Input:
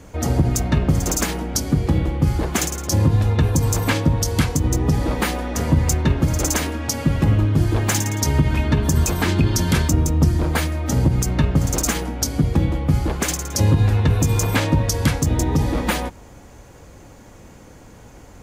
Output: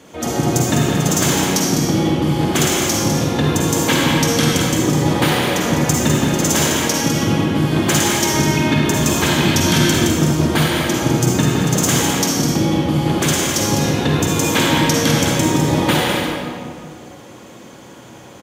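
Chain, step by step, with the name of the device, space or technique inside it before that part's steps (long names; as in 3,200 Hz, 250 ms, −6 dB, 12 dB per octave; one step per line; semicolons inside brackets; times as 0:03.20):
stadium PA (high-pass filter 200 Hz 12 dB per octave; parametric band 3,300 Hz +7.5 dB 0.49 octaves; loudspeakers that aren't time-aligned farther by 59 metres −11 dB, 70 metres −7 dB; convolution reverb RT60 2.1 s, pre-delay 41 ms, DRR −3 dB)
level +1 dB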